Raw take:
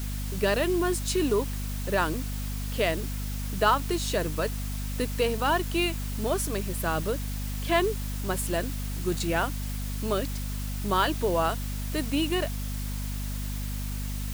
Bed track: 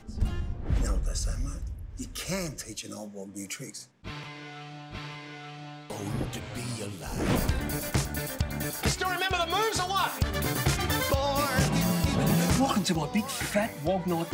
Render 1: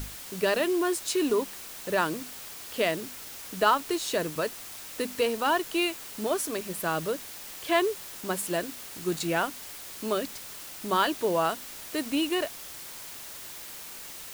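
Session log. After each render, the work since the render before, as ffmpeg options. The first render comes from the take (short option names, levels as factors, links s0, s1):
-af "bandreject=f=50:t=h:w=6,bandreject=f=100:t=h:w=6,bandreject=f=150:t=h:w=6,bandreject=f=200:t=h:w=6,bandreject=f=250:t=h:w=6"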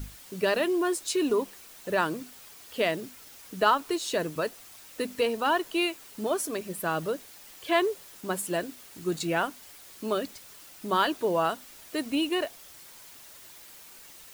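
-af "afftdn=nr=8:nf=-42"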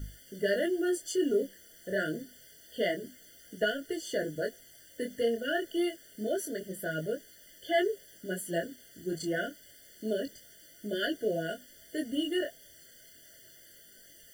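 -af "flanger=delay=18.5:depth=7.8:speed=0.27,afftfilt=real='re*eq(mod(floor(b*sr/1024/710),2),0)':imag='im*eq(mod(floor(b*sr/1024/710),2),0)':win_size=1024:overlap=0.75"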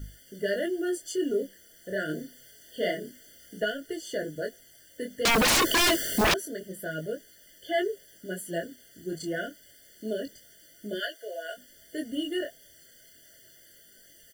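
-filter_complex "[0:a]asplit=3[s0][s1][s2];[s0]afade=t=out:st=2.08:d=0.02[s3];[s1]asplit=2[s4][s5];[s5]adelay=33,volume=0.75[s6];[s4][s6]amix=inputs=2:normalize=0,afade=t=in:st=2.08:d=0.02,afade=t=out:st=3.6:d=0.02[s7];[s2]afade=t=in:st=3.6:d=0.02[s8];[s3][s7][s8]amix=inputs=3:normalize=0,asettb=1/sr,asplit=3[s9][s10][s11];[s9]atrim=end=5.254[s12];[s10]atrim=start=5.25:end=6.34,asetpts=PTS-STARTPTS,afade=t=in:d=0.004:c=qsin,afade=t=out:st=1.086:d=0.004:c=qsin,aeval=exprs='0.119*sin(PI/2*10*val(0)/0.119)':c=same[s13];[s11]atrim=start=6.336[s14];[s12][s13]acrossfade=d=0.004:c1=hsin:c2=qsin[s15];[s15][s14]acrossfade=d=0.004:c1=qsin:c2=hsin,asplit=3[s16][s17][s18];[s16]afade=t=out:st=10.99:d=0.02[s19];[s17]highpass=f=580:w=0.5412,highpass=f=580:w=1.3066,afade=t=in:st=10.99:d=0.02,afade=t=out:st=11.56:d=0.02[s20];[s18]afade=t=in:st=11.56:d=0.02[s21];[s19][s20][s21]amix=inputs=3:normalize=0"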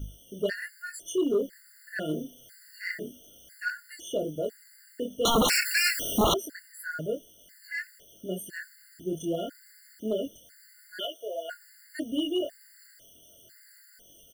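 -filter_complex "[0:a]asplit=2[s0][s1];[s1]aeval=exprs='0.0668*(abs(mod(val(0)/0.0668+3,4)-2)-1)':c=same,volume=0.376[s2];[s0][s2]amix=inputs=2:normalize=0,afftfilt=real='re*gt(sin(2*PI*1*pts/sr)*(1-2*mod(floor(b*sr/1024/1400),2)),0)':imag='im*gt(sin(2*PI*1*pts/sr)*(1-2*mod(floor(b*sr/1024/1400),2)),0)':win_size=1024:overlap=0.75"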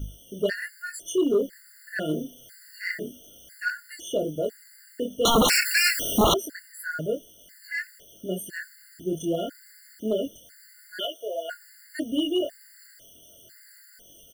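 -af "volume=1.5"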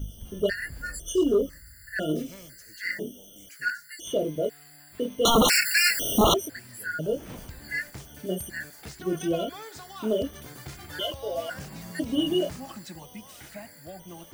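-filter_complex "[1:a]volume=0.168[s0];[0:a][s0]amix=inputs=2:normalize=0"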